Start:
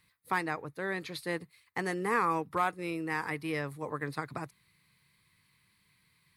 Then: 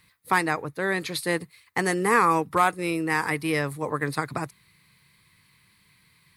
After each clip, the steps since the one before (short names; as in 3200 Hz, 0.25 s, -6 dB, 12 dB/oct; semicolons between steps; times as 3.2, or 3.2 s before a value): dynamic EQ 9200 Hz, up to +7 dB, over -58 dBFS, Q 0.75; gain +8.5 dB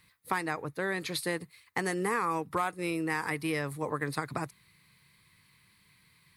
compressor 3:1, threshold -25 dBFS, peak gain reduction 8.5 dB; gain -3 dB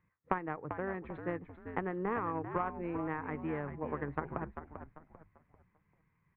added harmonics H 3 -12 dB, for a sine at -13.5 dBFS; Gaussian blur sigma 5.3 samples; frequency-shifting echo 0.393 s, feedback 34%, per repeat -80 Hz, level -8.5 dB; gain +6 dB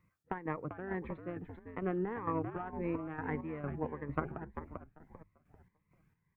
chopper 2.2 Hz, depth 60%, duty 50%; cascading phaser rising 1.7 Hz; gain +4 dB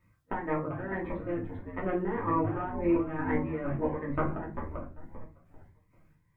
shoebox room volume 160 m³, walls furnished, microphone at 2.7 m